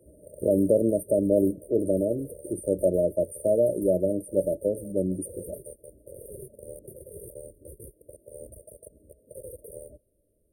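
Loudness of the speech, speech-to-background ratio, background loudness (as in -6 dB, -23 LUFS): -25.5 LUFS, 20.0 dB, -45.5 LUFS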